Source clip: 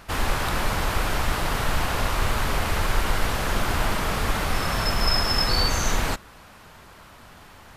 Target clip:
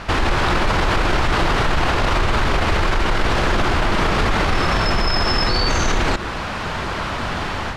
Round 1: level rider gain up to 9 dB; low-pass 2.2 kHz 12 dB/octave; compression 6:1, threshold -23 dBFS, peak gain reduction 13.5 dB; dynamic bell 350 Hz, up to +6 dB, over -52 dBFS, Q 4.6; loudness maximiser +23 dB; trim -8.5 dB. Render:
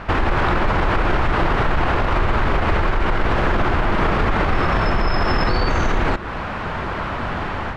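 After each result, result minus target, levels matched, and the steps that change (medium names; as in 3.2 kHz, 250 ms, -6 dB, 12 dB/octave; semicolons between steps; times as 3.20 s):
4 kHz band -7.0 dB; compression: peak gain reduction +5 dB
change: low-pass 4.9 kHz 12 dB/octave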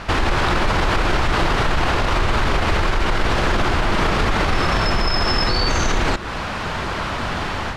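compression: peak gain reduction +5 dB
change: compression 6:1, threshold -17 dBFS, peak gain reduction 8.5 dB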